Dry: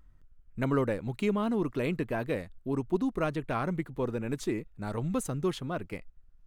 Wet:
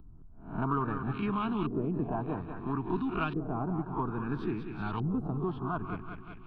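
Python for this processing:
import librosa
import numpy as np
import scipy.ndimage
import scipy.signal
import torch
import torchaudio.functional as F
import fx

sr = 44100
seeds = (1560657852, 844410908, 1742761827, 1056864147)

p1 = fx.spec_swells(x, sr, rise_s=0.35)
p2 = fx.echo_feedback(p1, sr, ms=189, feedback_pct=51, wet_db=-10.5)
p3 = fx.filter_lfo_lowpass(p2, sr, shape='saw_up', hz=0.6, low_hz=450.0, high_hz=3000.0, q=1.8)
p4 = fx.hpss(p3, sr, part='harmonic', gain_db=-4)
p5 = 10.0 ** (-21.0 / 20.0) * np.tanh(p4 / 10.0 ** (-21.0 / 20.0))
p6 = p4 + F.gain(torch.from_numpy(p5), -8.0).numpy()
p7 = fx.fixed_phaser(p6, sr, hz=2000.0, stages=6)
y = fx.band_squash(p7, sr, depth_pct=40)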